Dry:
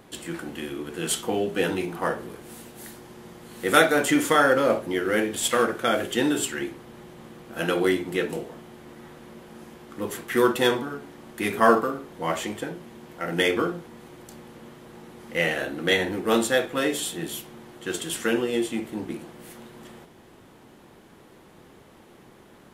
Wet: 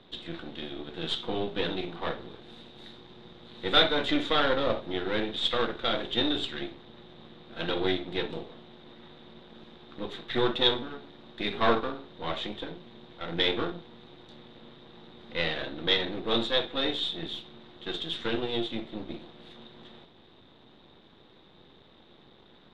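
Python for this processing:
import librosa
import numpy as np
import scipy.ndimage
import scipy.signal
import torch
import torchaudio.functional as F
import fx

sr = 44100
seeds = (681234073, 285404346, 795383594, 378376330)

y = np.where(x < 0.0, 10.0 ** (-12.0 / 20.0) * x, x)
y = fx.lowpass_res(y, sr, hz=3700.0, q=14.0)
y = fx.high_shelf(y, sr, hz=2200.0, db=-9.0)
y = y * 10.0 ** (-2.5 / 20.0)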